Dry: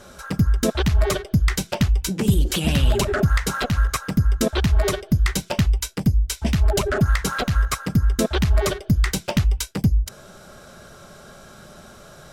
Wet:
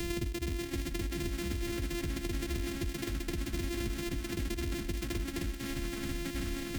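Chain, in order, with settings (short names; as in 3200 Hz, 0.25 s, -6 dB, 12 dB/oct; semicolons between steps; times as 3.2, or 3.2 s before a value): sample sorter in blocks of 128 samples; band shelf 900 Hz -12 dB; notches 60/120 Hz; in parallel at 0 dB: limiter -17.5 dBFS, peak gain reduction 9.5 dB; on the sum: compressor 6:1, threshold -29 dBFS, peak gain reduction 17.5 dB; time stretch by phase-locked vocoder 0.55×; echoes that change speed 0.582 s, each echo -4 st, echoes 2, each echo -6 dB; three-band squash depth 100%; gain -5 dB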